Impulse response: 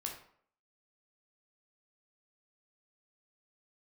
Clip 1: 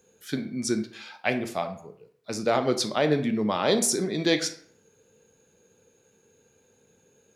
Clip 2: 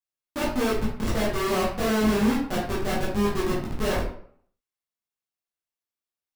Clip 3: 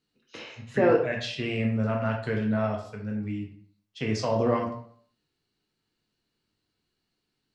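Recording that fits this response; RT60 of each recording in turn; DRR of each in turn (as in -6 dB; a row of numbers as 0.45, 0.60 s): 3; 0.60, 0.60, 0.60 s; 7.5, -7.5, 0.0 dB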